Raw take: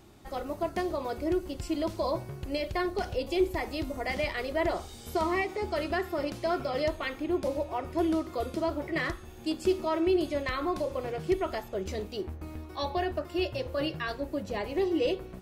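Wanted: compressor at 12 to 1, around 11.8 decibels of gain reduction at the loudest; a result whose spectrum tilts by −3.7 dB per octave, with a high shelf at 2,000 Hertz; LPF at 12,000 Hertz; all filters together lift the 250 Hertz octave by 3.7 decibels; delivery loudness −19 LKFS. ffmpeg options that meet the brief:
ffmpeg -i in.wav -af "lowpass=12000,equalizer=frequency=250:width_type=o:gain=5.5,highshelf=frequency=2000:gain=7.5,acompressor=threshold=-30dB:ratio=12,volume=16dB" out.wav

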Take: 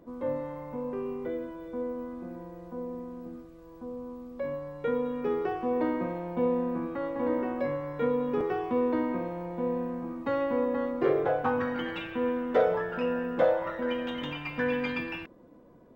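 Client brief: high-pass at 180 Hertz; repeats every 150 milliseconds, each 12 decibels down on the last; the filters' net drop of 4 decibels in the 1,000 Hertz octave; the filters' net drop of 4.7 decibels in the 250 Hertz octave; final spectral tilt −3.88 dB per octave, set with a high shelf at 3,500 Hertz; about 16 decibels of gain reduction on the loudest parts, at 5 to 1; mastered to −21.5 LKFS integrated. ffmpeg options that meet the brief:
ffmpeg -i in.wav -af "highpass=180,equalizer=frequency=250:width_type=o:gain=-4,equalizer=frequency=1000:width_type=o:gain=-5.5,highshelf=frequency=3500:gain=4.5,acompressor=threshold=-40dB:ratio=5,aecho=1:1:150|300|450:0.251|0.0628|0.0157,volume=21dB" out.wav

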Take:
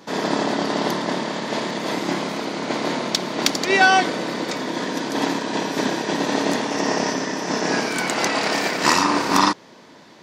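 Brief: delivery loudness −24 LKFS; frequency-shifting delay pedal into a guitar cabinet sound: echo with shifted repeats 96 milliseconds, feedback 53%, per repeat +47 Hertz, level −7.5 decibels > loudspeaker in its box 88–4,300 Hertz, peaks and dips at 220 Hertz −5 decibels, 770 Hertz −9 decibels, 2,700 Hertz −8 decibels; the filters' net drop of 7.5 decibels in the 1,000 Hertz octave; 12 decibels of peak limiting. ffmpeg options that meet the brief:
ffmpeg -i in.wav -filter_complex "[0:a]equalizer=frequency=1000:width_type=o:gain=-4.5,alimiter=limit=-15dB:level=0:latency=1,asplit=7[link_01][link_02][link_03][link_04][link_05][link_06][link_07];[link_02]adelay=96,afreqshift=47,volume=-7.5dB[link_08];[link_03]adelay=192,afreqshift=94,volume=-13dB[link_09];[link_04]adelay=288,afreqshift=141,volume=-18.5dB[link_10];[link_05]adelay=384,afreqshift=188,volume=-24dB[link_11];[link_06]adelay=480,afreqshift=235,volume=-29.6dB[link_12];[link_07]adelay=576,afreqshift=282,volume=-35.1dB[link_13];[link_01][link_08][link_09][link_10][link_11][link_12][link_13]amix=inputs=7:normalize=0,highpass=88,equalizer=frequency=220:width_type=q:width=4:gain=-5,equalizer=frequency=770:width_type=q:width=4:gain=-9,equalizer=frequency=2700:width_type=q:width=4:gain=-8,lowpass=frequency=4300:width=0.5412,lowpass=frequency=4300:width=1.3066,volume=3dB" out.wav

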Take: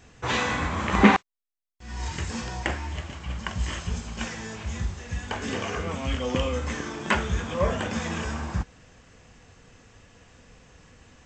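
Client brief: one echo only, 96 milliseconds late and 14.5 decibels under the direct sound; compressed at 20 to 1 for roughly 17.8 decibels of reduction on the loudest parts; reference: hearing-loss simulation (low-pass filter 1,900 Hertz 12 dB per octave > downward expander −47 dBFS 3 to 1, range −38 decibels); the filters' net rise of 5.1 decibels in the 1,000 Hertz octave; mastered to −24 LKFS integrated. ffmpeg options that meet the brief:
ffmpeg -i in.wav -af "equalizer=frequency=1000:width_type=o:gain=6.5,acompressor=threshold=-26dB:ratio=20,lowpass=1900,aecho=1:1:96:0.188,agate=range=-38dB:threshold=-47dB:ratio=3,volume=9dB" out.wav

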